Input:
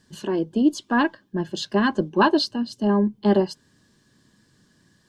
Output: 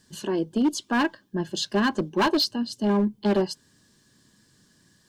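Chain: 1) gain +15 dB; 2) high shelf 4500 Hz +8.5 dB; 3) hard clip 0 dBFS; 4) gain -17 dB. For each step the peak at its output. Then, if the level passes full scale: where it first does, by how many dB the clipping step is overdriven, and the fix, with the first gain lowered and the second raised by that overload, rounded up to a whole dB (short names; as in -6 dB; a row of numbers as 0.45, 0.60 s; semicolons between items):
+8.0, +8.5, 0.0, -17.0 dBFS; step 1, 8.5 dB; step 1 +6 dB, step 4 -8 dB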